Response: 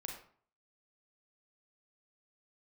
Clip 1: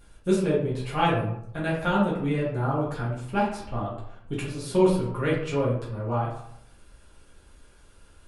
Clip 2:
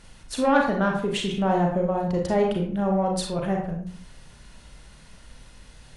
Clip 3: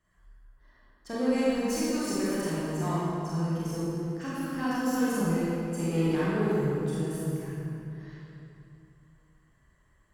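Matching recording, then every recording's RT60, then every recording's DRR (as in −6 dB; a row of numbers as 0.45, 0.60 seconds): 2; 0.75, 0.50, 2.9 seconds; −7.5, 0.5, −9.5 decibels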